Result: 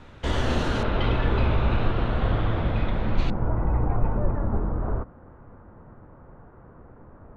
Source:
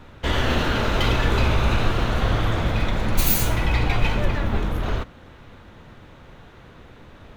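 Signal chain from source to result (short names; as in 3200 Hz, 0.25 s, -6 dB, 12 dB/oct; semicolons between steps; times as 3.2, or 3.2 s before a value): LPF 10000 Hz 24 dB/oct, from 0.83 s 3500 Hz, from 3.3 s 1300 Hz; dynamic EQ 2400 Hz, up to -6 dB, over -41 dBFS, Q 0.72; gain -2 dB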